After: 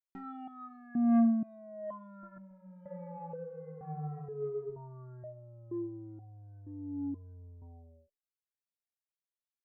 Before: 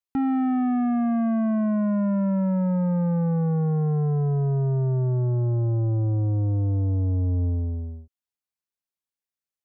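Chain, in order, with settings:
0:02.11–0:04.70: reverse bouncing-ball delay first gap 120 ms, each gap 1.1×, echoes 5
step-sequenced resonator 2.1 Hz 190–760 Hz

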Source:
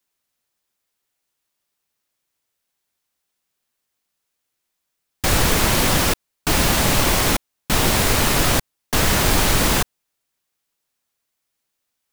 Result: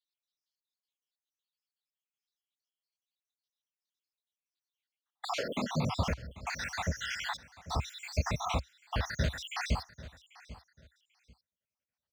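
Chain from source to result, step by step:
time-frequency cells dropped at random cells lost 70%
drawn EQ curve 230 Hz 0 dB, 340 Hz −13 dB, 550 Hz 0 dB, 5,900 Hz −7 dB, 10,000 Hz −27 dB
repeating echo 791 ms, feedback 24%, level −19.5 dB
downward compressor, threshold −21 dBFS, peak gain reduction 7 dB
high-pass filter sweep 3,800 Hz → 64 Hz, 0:04.65–0:06.07
gain on a spectral selection 0:11.12–0:11.43, 540–2,100 Hz −10 dB
level −6 dB

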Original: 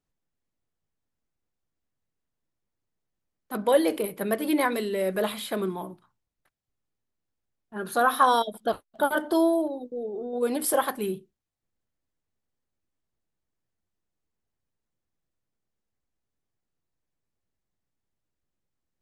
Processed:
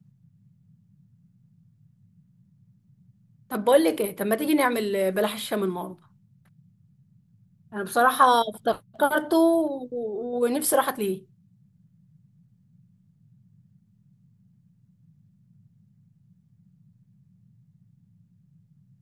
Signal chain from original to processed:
noise in a band 100–190 Hz −61 dBFS
level +2.5 dB

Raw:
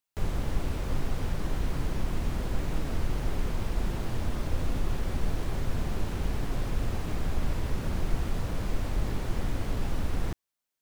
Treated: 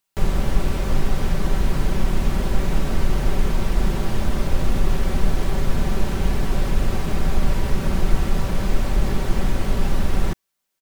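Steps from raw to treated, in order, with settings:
comb filter 5.2 ms, depth 42%
level +8.5 dB

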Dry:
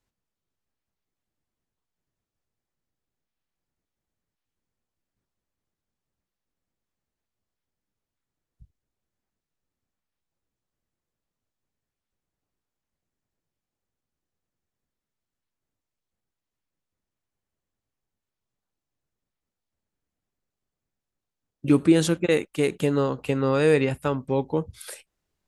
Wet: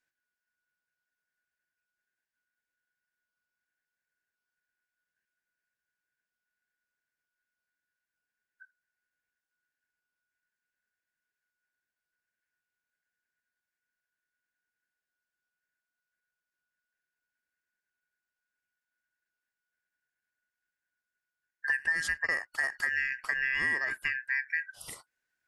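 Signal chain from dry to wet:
band-splitting scrambler in four parts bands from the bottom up 2143
downward compressor 5 to 1, threshold −22 dBFS, peak gain reduction 9.5 dB
level −4.5 dB

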